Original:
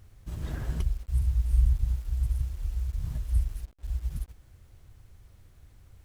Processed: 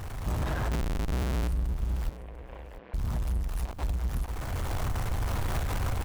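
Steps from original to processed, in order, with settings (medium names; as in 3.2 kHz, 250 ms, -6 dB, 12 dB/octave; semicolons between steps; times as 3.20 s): recorder AGC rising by 28 dB/s; peaking EQ 890 Hz +12 dB 1.8 oct; compression, threshold -31 dBFS, peak gain reduction 14 dB; 0.71–1.48 s: Schmitt trigger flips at -43 dBFS; power-law waveshaper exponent 0.5; 2.09–2.94 s: cabinet simulation 420–2700 Hz, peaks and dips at 500 Hz +6 dB, 850 Hz -4 dB, 1.3 kHz -8 dB; delay 695 ms -15 dB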